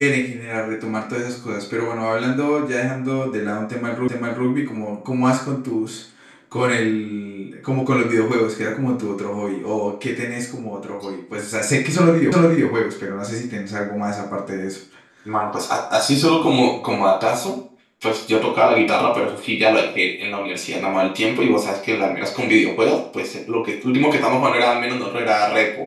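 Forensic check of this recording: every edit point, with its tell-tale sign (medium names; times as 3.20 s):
4.08 s: repeat of the last 0.39 s
12.32 s: repeat of the last 0.36 s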